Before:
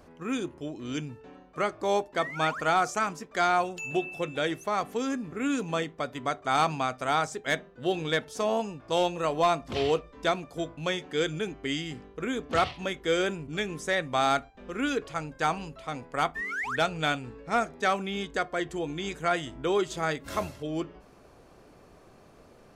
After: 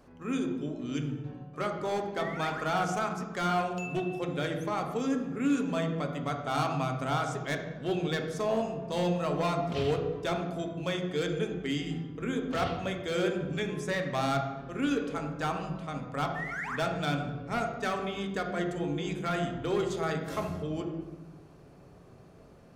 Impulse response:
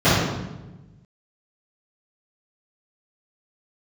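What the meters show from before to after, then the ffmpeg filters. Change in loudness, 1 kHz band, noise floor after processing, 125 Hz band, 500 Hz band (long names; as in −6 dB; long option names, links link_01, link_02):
−2.5 dB, −4.5 dB, −53 dBFS, +4.5 dB, −2.5 dB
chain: -filter_complex "[0:a]volume=21.5dB,asoftclip=hard,volume=-21.5dB,asplit=2[link_01][link_02];[1:a]atrim=start_sample=2205[link_03];[link_02][link_03]afir=irnorm=-1:irlink=0,volume=-27.5dB[link_04];[link_01][link_04]amix=inputs=2:normalize=0,volume=-5dB"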